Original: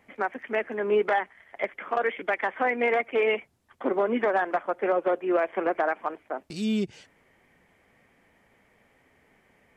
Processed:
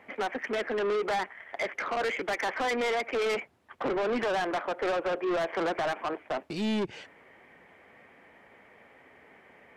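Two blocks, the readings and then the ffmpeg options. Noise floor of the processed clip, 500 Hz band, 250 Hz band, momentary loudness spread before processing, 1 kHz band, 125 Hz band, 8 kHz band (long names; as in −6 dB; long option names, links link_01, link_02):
−58 dBFS, −4.0 dB, −3.0 dB, 9 LU, −3.5 dB, −1.5 dB, can't be measured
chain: -af "highpass=54,bass=frequency=250:gain=-9,treble=frequency=4000:gain=-13,alimiter=limit=-21.5dB:level=0:latency=1:release=30,asoftclip=type=tanh:threshold=-34.5dB,volume=8.5dB"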